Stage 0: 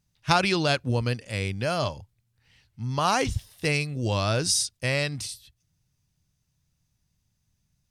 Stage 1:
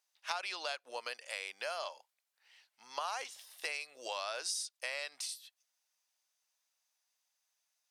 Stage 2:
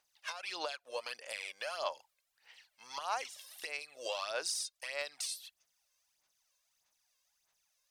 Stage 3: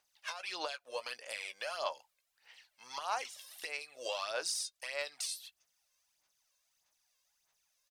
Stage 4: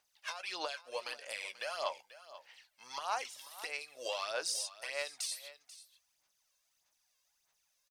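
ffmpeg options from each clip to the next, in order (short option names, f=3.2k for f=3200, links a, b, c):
-af "highpass=f=620:w=0.5412,highpass=f=620:w=1.3066,acompressor=threshold=-35dB:ratio=4,volume=-2dB"
-af "lowshelf=f=110:g=8,alimiter=level_in=5.5dB:limit=-24dB:level=0:latency=1:release=425,volume=-5.5dB,aphaser=in_gain=1:out_gain=1:delay=1.9:decay=0.61:speed=1.6:type=sinusoidal,volume=2dB"
-filter_complex "[0:a]asplit=2[a][b];[b]adelay=16,volume=-12.5dB[c];[a][c]amix=inputs=2:normalize=0"
-af "aecho=1:1:488:0.158"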